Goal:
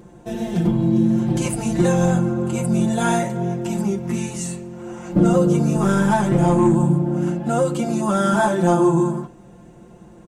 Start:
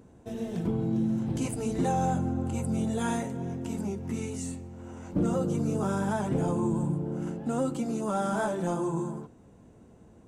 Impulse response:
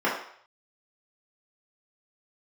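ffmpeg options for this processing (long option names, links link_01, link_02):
-filter_complex "[0:a]aecho=1:1:5.7:0.84,asettb=1/sr,asplit=3[link_01][link_02][link_03];[link_01]atrim=end=5.764[link_04];[link_02]atrim=start=5.76:end=6.75,asetpts=PTS-STARTPTS,afade=type=in:duration=0.004:curve=qsin,afade=type=out:start_time=0.986:duration=0.004:curve=qsin,aeval=exprs='0.2*(cos(1*acos(clip(val(0)/0.2,-1,1)))-cos(1*PI/2))+0.00562*(cos(8*acos(clip(val(0)/0.2,-1,1)))-cos(8*PI/2))':channel_layout=same[link_05];[link_03]atrim=start=6.746[link_06];[link_04][link_05]acrossfade=duration=0.004:curve1=hsin:curve2=qsin[link_07];[link_07][link_06]acrossfade=duration=0.004:curve1=qsin:curve2=hsin,asplit=2[link_08][link_09];[1:a]atrim=start_sample=2205,asetrate=88200,aresample=44100[link_10];[link_09][link_10]afir=irnorm=-1:irlink=0,volume=-20.5dB[link_11];[link_08][link_11]amix=inputs=2:normalize=0,volume=8dB"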